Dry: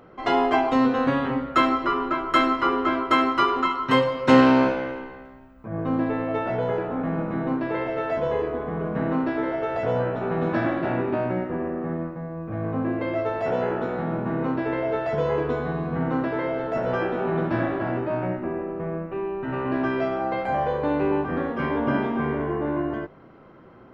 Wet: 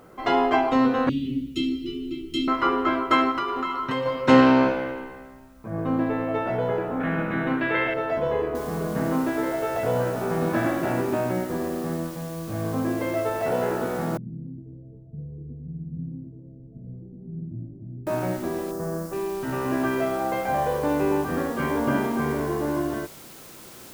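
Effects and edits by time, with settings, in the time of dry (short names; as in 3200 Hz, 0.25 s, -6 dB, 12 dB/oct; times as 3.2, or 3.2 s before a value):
1.09–2.48 elliptic band-stop 330–2900 Hz
3.31–4.06 compressor, threshold -23 dBFS
7–7.94 band shelf 2300 Hz +11 dB
8.55 noise floor step -67 dB -46 dB
14.17–18.07 ladder low-pass 220 Hz, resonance 25%
18.71–19.13 band shelf 2900 Hz -11 dB 1.2 oct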